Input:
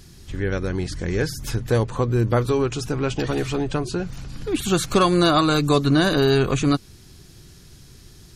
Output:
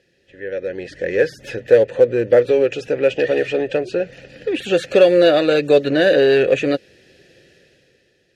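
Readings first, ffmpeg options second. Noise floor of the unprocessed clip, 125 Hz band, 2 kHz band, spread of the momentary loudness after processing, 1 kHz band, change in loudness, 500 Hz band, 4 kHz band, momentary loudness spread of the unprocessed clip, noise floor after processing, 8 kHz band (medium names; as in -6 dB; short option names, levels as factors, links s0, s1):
-47 dBFS, -10.5 dB, +5.0 dB, 14 LU, -5.0 dB, +5.0 dB, +9.5 dB, -0.5 dB, 10 LU, -62 dBFS, no reading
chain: -filter_complex "[0:a]asplit=3[s0][s1][s2];[s0]bandpass=f=530:t=q:w=8,volume=1[s3];[s1]bandpass=f=1840:t=q:w=8,volume=0.501[s4];[s2]bandpass=f=2480:t=q:w=8,volume=0.355[s5];[s3][s4][s5]amix=inputs=3:normalize=0,dynaudnorm=f=120:g=13:m=3.98,asplit=2[s6][s7];[s7]asoftclip=type=hard:threshold=0.119,volume=0.447[s8];[s6][s8]amix=inputs=2:normalize=0,aeval=exprs='0.596*(cos(1*acos(clip(val(0)/0.596,-1,1)))-cos(1*PI/2))+0.0119*(cos(7*acos(clip(val(0)/0.596,-1,1)))-cos(7*PI/2))':c=same,volume=1.5"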